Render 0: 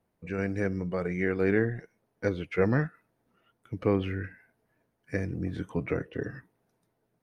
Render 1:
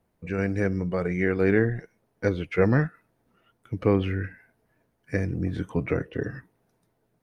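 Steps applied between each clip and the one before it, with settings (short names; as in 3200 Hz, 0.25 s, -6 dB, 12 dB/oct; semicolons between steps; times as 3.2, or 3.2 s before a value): low shelf 75 Hz +6 dB; gain +3.5 dB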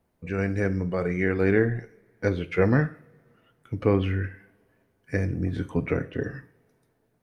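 two-slope reverb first 0.41 s, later 2.4 s, from -26 dB, DRR 11 dB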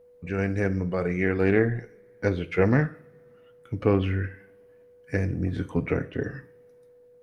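whine 490 Hz -52 dBFS; Doppler distortion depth 0.11 ms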